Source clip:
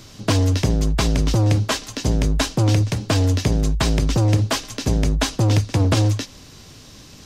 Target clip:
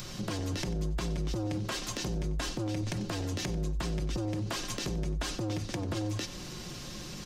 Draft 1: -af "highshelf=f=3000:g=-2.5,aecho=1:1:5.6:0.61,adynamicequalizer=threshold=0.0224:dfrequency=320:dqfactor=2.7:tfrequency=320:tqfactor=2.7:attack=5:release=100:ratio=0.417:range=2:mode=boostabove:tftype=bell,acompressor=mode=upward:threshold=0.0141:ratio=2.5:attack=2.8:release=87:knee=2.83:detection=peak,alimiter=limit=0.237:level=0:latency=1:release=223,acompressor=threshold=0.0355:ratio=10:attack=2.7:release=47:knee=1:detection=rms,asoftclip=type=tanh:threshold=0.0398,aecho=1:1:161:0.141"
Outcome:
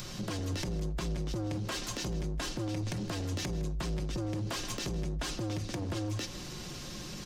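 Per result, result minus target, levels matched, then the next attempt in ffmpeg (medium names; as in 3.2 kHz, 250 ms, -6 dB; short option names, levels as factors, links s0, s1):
echo 68 ms late; saturation: distortion +10 dB
-af "highshelf=f=3000:g=-2.5,aecho=1:1:5.6:0.61,adynamicequalizer=threshold=0.0224:dfrequency=320:dqfactor=2.7:tfrequency=320:tqfactor=2.7:attack=5:release=100:ratio=0.417:range=2:mode=boostabove:tftype=bell,acompressor=mode=upward:threshold=0.0141:ratio=2.5:attack=2.8:release=87:knee=2.83:detection=peak,alimiter=limit=0.237:level=0:latency=1:release=223,acompressor=threshold=0.0355:ratio=10:attack=2.7:release=47:knee=1:detection=rms,asoftclip=type=tanh:threshold=0.0398,aecho=1:1:93:0.141"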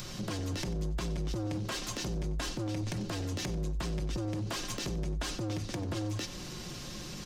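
saturation: distortion +10 dB
-af "highshelf=f=3000:g=-2.5,aecho=1:1:5.6:0.61,adynamicequalizer=threshold=0.0224:dfrequency=320:dqfactor=2.7:tfrequency=320:tqfactor=2.7:attack=5:release=100:ratio=0.417:range=2:mode=boostabove:tftype=bell,acompressor=mode=upward:threshold=0.0141:ratio=2.5:attack=2.8:release=87:knee=2.83:detection=peak,alimiter=limit=0.237:level=0:latency=1:release=223,acompressor=threshold=0.0355:ratio=10:attack=2.7:release=47:knee=1:detection=rms,asoftclip=type=tanh:threshold=0.0841,aecho=1:1:93:0.141"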